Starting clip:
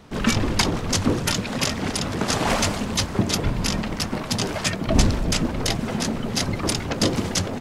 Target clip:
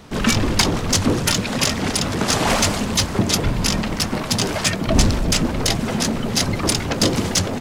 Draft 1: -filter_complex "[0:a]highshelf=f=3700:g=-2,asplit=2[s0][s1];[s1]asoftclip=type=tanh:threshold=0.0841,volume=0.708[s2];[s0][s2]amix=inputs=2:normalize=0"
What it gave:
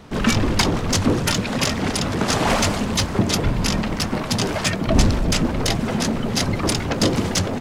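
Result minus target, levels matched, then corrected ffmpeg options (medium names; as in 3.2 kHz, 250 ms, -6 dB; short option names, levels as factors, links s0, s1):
8 kHz band -3.0 dB
-filter_complex "[0:a]highshelf=f=3700:g=4,asplit=2[s0][s1];[s1]asoftclip=type=tanh:threshold=0.0841,volume=0.708[s2];[s0][s2]amix=inputs=2:normalize=0"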